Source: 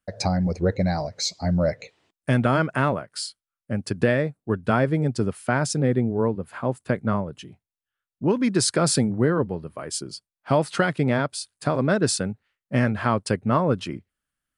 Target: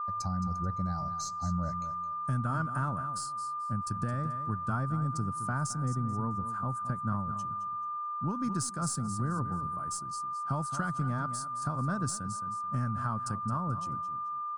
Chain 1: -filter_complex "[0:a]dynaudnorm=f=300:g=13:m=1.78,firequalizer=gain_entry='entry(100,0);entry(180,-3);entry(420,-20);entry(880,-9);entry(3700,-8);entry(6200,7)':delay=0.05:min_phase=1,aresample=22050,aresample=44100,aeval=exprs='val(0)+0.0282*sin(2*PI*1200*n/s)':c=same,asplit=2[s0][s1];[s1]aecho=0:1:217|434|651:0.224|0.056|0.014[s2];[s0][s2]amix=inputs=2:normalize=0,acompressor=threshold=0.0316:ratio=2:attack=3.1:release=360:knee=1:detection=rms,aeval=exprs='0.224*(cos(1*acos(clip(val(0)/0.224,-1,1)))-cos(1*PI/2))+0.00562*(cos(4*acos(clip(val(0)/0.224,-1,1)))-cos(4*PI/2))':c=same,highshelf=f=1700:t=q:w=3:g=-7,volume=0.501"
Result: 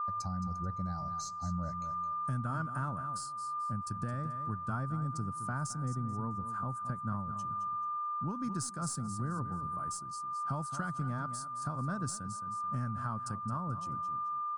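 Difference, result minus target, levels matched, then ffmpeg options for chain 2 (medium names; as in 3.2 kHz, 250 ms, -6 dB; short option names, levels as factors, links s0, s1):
compression: peak gain reduction +4 dB
-filter_complex "[0:a]dynaudnorm=f=300:g=13:m=1.78,firequalizer=gain_entry='entry(100,0);entry(180,-3);entry(420,-20);entry(880,-9);entry(3700,-8);entry(6200,7)':delay=0.05:min_phase=1,aresample=22050,aresample=44100,aeval=exprs='val(0)+0.0282*sin(2*PI*1200*n/s)':c=same,asplit=2[s0][s1];[s1]aecho=0:1:217|434|651:0.224|0.056|0.014[s2];[s0][s2]amix=inputs=2:normalize=0,acompressor=threshold=0.0794:ratio=2:attack=3.1:release=360:knee=1:detection=rms,aeval=exprs='0.224*(cos(1*acos(clip(val(0)/0.224,-1,1)))-cos(1*PI/2))+0.00562*(cos(4*acos(clip(val(0)/0.224,-1,1)))-cos(4*PI/2))':c=same,highshelf=f=1700:t=q:w=3:g=-7,volume=0.501"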